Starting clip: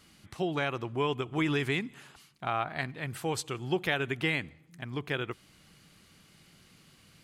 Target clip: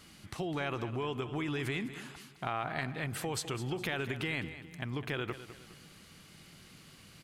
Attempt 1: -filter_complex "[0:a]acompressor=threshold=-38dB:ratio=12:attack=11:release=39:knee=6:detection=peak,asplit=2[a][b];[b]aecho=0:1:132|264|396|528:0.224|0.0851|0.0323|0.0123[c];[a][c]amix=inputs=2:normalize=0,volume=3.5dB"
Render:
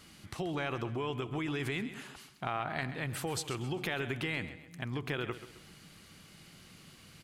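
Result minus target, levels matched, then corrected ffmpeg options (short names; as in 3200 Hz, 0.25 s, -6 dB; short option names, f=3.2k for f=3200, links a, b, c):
echo 74 ms early
-filter_complex "[0:a]acompressor=threshold=-38dB:ratio=12:attack=11:release=39:knee=6:detection=peak,asplit=2[a][b];[b]aecho=0:1:206|412|618|824:0.224|0.0851|0.0323|0.0123[c];[a][c]amix=inputs=2:normalize=0,volume=3.5dB"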